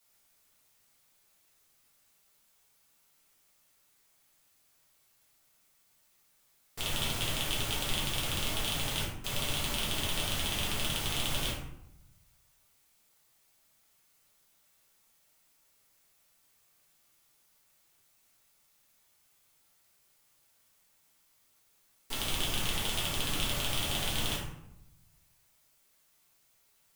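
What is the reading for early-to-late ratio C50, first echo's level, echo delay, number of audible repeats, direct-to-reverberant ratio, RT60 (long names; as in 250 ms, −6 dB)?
3.0 dB, no echo audible, no echo audible, no echo audible, −6.5 dB, 0.80 s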